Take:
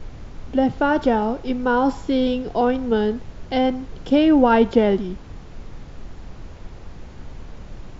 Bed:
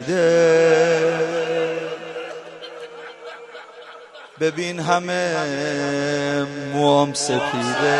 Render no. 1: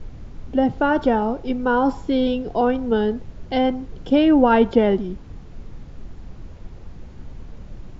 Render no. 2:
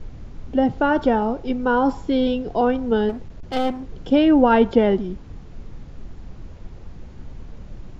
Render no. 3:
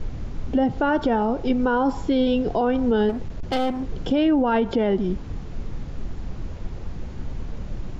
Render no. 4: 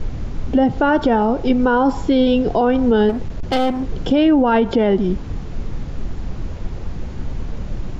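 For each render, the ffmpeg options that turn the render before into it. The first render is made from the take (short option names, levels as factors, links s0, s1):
-af "afftdn=nr=6:nf=-39"
-filter_complex "[0:a]asettb=1/sr,asplit=3[s0][s1][s2];[s0]atrim=end=3.094[s3];[s1]atrim=start=3.09:end=3.89,asetpts=PTS-STARTPTS,afade=t=in:d=0.004:c=qsin,afade=t=out:st=0.796:d=0.004:c=qsin,aeval=exprs='clip(val(0),-1,0.0299)':c=same[s4];[s2]atrim=start=3.886[s5];[s3][s4]acrossfade=d=0.004:c1=hsin:c2=qsin[s6];[s6][s5]acrossfade=d=0.004:c1=qsin:c2=hsin"
-filter_complex "[0:a]asplit=2[s0][s1];[s1]acompressor=threshold=0.0631:ratio=6,volume=1[s2];[s0][s2]amix=inputs=2:normalize=0,alimiter=limit=0.237:level=0:latency=1:release=96"
-af "volume=1.88"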